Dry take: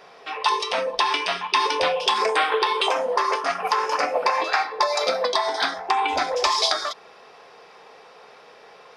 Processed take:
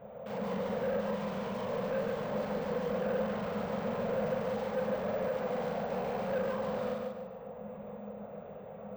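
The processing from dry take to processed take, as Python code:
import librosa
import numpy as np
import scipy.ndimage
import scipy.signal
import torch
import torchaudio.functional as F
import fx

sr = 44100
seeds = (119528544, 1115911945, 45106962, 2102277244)

p1 = fx.tracing_dist(x, sr, depth_ms=0.12)
p2 = fx.over_compress(p1, sr, threshold_db=-29.0, ratio=-0.5)
p3 = p1 + (p2 * 10.0 ** (1.5 / 20.0))
p4 = fx.lpc_vocoder(p3, sr, seeds[0], excitation='whisper', order=10)
p5 = (np.mod(10.0 ** (16.0 / 20.0) * p4 + 1.0, 2.0) - 1.0) / 10.0 ** (16.0 / 20.0)
p6 = fx.double_bandpass(p5, sr, hz=320.0, octaves=1.3)
p7 = fx.doubler(p6, sr, ms=43.0, db=-3.0)
p8 = 10.0 ** (-29.5 / 20.0) * np.tanh(p7 / 10.0 ** (-29.5 / 20.0))
p9 = p8 + fx.echo_feedback(p8, sr, ms=144, feedback_pct=36, wet_db=-3, dry=0)
y = np.repeat(scipy.signal.resample_poly(p9, 1, 2), 2)[:len(p9)]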